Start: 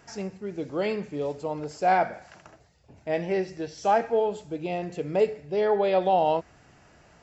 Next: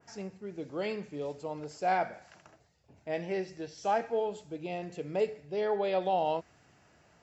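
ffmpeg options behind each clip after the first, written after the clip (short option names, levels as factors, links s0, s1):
-af "highpass=66,adynamicequalizer=threshold=0.0112:dfrequency=2100:dqfactor=0.7:tfrequency=2100:tqfactor=0.7:attack=5:release=100:ratio=0.375:range=1.5:mode=boostabove:tftype=highshelf,volume=0.447"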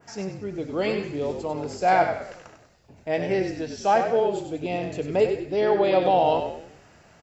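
-filter_complex "[0:a]asplit=6[s0][s1][s2][s3][s4][s5];[s1]adelay=97,afreqshift=-45,volume=0.447[s6];[s2]adelay=194,afreqshift=-90,volume=0.184[s7];[s3]adelay=291,afreqshift=-135,volume=0.075[s8];[s4]adelay=388,afreqshift=-180,volume=0.0309[s9];[s5]adelay=485,afreqshift=-225,volume=0.0126[s10];[s0][s6][s7][s8][s9][s10]amix=inputs=6:normalize=0,volume=2.66"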